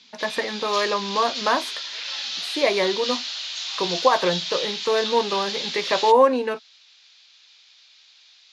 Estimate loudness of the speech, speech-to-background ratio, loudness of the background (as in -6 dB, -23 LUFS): -23.0 LUFS, 4.5 dB, -27.5 LUFS